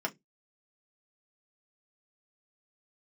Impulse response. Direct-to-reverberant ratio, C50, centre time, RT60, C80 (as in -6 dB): 1.5 dB, 24.5 dB, 6 ms, 0.15 s, 37.0 dB